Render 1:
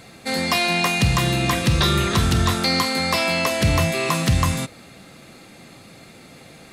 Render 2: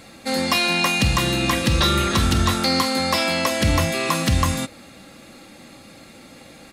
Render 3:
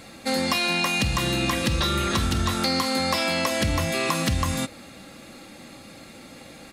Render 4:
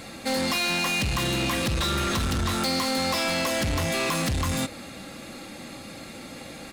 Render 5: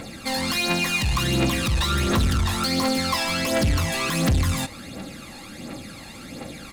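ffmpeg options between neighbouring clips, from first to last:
-af "aecho=1:1:3.6:0.42"
-af "acompressor=threshold=0.1:ratio=6"
-af "asoftclip=type=tanh:threshold=0.0473,volume=1.58"
-af "aphaser=in_gain=1:out_gain=1:delay=1.2:decay=0.57:speed=1.4:type=triangular"

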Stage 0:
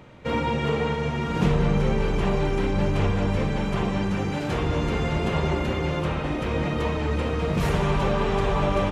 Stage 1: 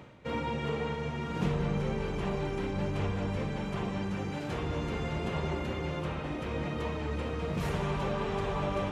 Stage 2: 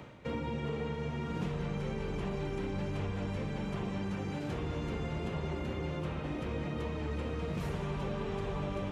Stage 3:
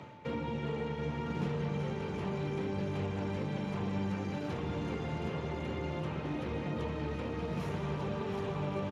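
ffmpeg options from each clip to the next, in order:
-af "areverse,acompressor=mode=upward:threshold=0.0501:ratio=2.5,areverse,highpass=49,volume=0.376"
-filter_complex "[0:a]acrossover=split=500|1400[s0][s1][s2];[s0]acompressor=threshold=0.0178:ratio=4[s3];[s1]acompressor=threshold=0.00355:ratio=4[s4];[s2]acompressor=threshold=0.00282:ratio=4[s5];[s3][s4][s5]amix=inputs=3:normalize=0,volume=1.19"
-af "aeval=exprs='val(0)+0.002*sin(2*PI*880*n/s)':c=same,aecho=1:1:724:0.355" -ar 32000 -c:a libspeex -b:a 36k

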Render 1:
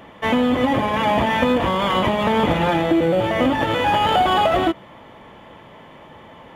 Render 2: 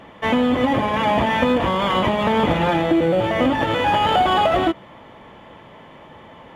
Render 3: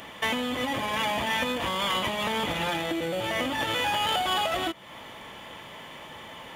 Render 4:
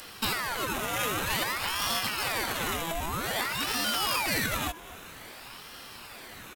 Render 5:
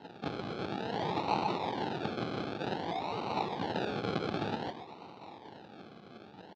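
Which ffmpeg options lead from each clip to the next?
-af "highshelf=f=11000:g=-8"
-af "acompressor=threshold=0.0355:ratio=2.5,crystalizer=i=8.5:c=0,volume=0.596"
-filter_complex "[0:a]asplit=2[s0][s1];[s1]adelay=233.2,volume=0.158,highshelf=f=4000:g=-5.25[s2];[s0][s2]amix=inputs=2:normalize=0,aexciter=amount=2.7:drive=7.3:freq=5500,aeval=exprs='val(0)*sin(2*PI*1300*n/s+1300*0.75/0.52*sin(2*PI*0.52*n/s))':c=same"
-af "aecho=1:1:125:0.316,acrusher=samples=37:mix=1:aa=0.000001:lfo=1:lforange=22.2:lforate=0.54,highpass=f=120:w=0.5412,highpass=f=120:w=1.3066,equalizer=f=140:t=q:w=4:g=-4,equalizer=f=250:t=q:w=4:g=-3,equalizer=f=590:t=q:w=4:g=-4,equalizer=f=840:t=q:w=4:g=9,equalizer=f=2000:t=q:w=4:g=-5,equalizer=f=3900:t=q:w=4:g=5,lowpass=f=4300:w=0.5412,lowpass=f=4300:w=1.3066,volume=0.631"

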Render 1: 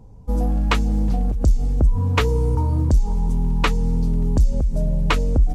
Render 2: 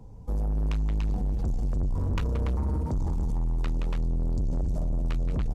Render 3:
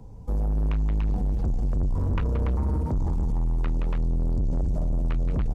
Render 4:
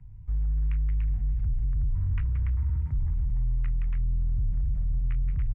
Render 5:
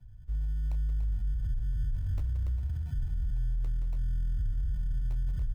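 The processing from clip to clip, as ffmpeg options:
-filter_complex "[0:a]acrossover=split=140[s0][s1];[s1]acompressor=threshold=0.0355:ratio=6[s2];[s0][s2]amix=inputs=2:normalize=0,aecho=1:1:174.9|288.6:0.316|0.631,asoftclip=type=tanh:threshold=0.075,volume=0.841"
-filter_complex "[0:a]acrossover=split=2800[s0][s1];[s1]acompressor=threshold=0.001:ratio=4:attack=1:release=60[s2];[s0][s2]amix=inputs=2:normalize=0,volume=1.33"
-af "firequalizer=gain_entry='entry(120,0);entry(200,-17);entry(470,-30);entry(1300,-11);entry(2000,-1);entry(4100,-22)':delay=0.05:min_phase=1,volume=0.841"
-filter_complex "[0:a]flanger=delay=3.1:depth=5.4:regen=-76:speed=0.88:shape=sinusoidal,acrossover=split=140[s0][s1];[s1]acrusher=samples=27:mix=1:aa=0.000001[s2];[s0][s2]amix=inputs=2:normalize=0"

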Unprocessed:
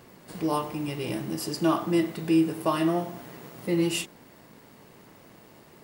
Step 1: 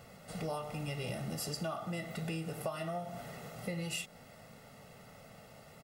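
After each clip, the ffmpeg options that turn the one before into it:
-af "aecho=1:1:1.5:0.82,acompressor=threshold=0.0282:ratio=12,volume=0.668"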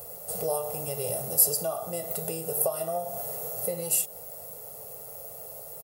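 -af "firequalizer=gain_entry='entry(100,0);entry(250,-11);entry(440,10);entry(1300,-5);entry(1900,-12);entry(12000,11)':delay=0.05:min_phase=1,crystalizer=i=3:c=0,volume=1.33"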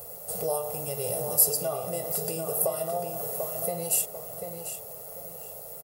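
-filter_complex "[0:a]asplit=2[s0][s1];[s1]adelay=743,lowpass=f=4800:p=1,volume=0.501,asplit=2[s2][s3];[s3]adelay=743,lowpass=f=4800:p=1,volume=0.32,asplit=2[s4][s5];[s5]adelay=743,lowpass=f=4800:p=1,volume=0.32,asplit=2[s6][s7];[s7]adelay=743,lowpass=f=4800:p=1,volume=0.32[s8];[s0][s2][s4][s6][s8]amix=inputs=5:normalize=0"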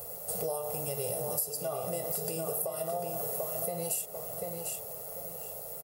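-af "acompressor=threshold=0.0316:ratio=6"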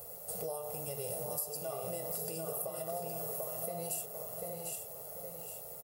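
-af "aecho=1:1:816:0.422,volume=0.531"

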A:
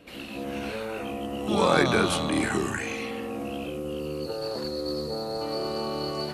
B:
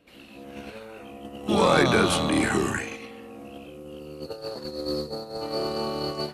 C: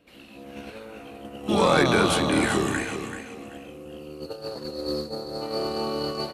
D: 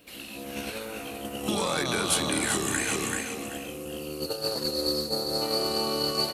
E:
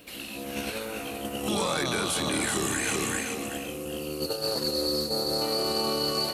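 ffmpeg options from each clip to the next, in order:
-af "agate=range=0.251:threshold=0.0316:ratio=16:detection=peak,asoftclip=type=tanh:threshold=0.266,volume=1.41"
-af "aecho=1:1:385|770|1155:0.355|0.0852|0.0204"
-af "acompressor=threshold=0.0355:ratio=12,crystalizer=i=3.5:c=0,volume=1.41"
-af "alimiter=limit=0.0944:level=0:latency=1:release=18,areverse,acompressor=mode=upward:threshold=0.0141:ratio=2.5,areverse,volume=1.26"

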